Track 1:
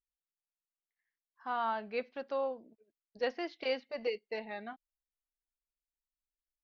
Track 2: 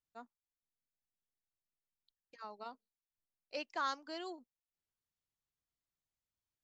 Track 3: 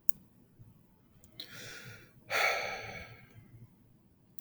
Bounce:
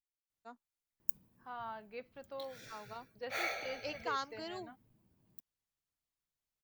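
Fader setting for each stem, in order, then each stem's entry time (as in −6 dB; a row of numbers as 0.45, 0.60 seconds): −10.5, −0.5, −7.5 decibels; 0.00, 0.30, 1.00 seconds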